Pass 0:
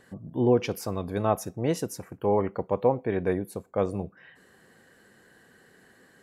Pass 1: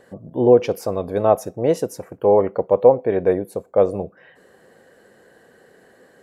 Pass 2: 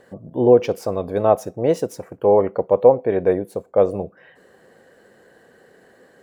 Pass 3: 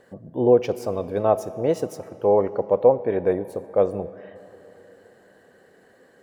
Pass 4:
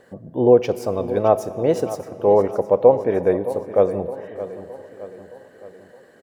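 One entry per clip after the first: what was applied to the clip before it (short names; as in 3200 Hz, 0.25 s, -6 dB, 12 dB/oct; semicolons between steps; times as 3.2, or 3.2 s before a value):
bell 550 Hz +11.5 dB 1.2 oct; gain +1 dB
median filter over 3 samples
digital reverb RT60 3.8 s, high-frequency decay 0.75×, pre-delay 10 ms, DRR 15.5 dB; gain -3.5 dB
feedback echo 0.617 s, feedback 52%, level -14 dB; gain +3 dB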